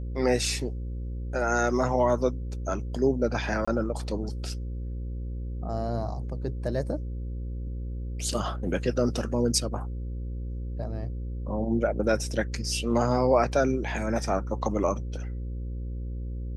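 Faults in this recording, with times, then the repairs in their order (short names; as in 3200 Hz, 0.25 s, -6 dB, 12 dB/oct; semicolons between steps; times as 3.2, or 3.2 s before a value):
buzz 60 Hz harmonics 9 -33 dBFS
3.65–3.67 gap 25 ms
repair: de-hum 60 Hz, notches 9; interpolate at 3.65, 25 ms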